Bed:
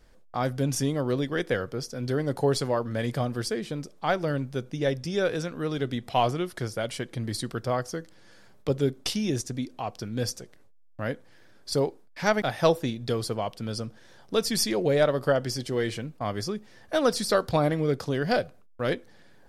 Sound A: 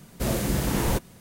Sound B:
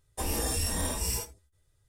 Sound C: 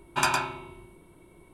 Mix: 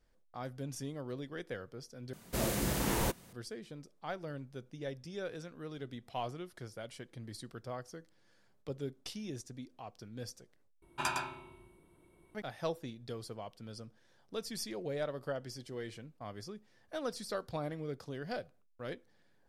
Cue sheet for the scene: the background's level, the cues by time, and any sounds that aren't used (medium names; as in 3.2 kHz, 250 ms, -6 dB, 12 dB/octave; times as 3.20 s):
bed -15 dB
2.13 s: replace with A -4.5 dB + bass shelf 270 Hz -6 dB
10.82 s: replace with C -10 dB
not used: B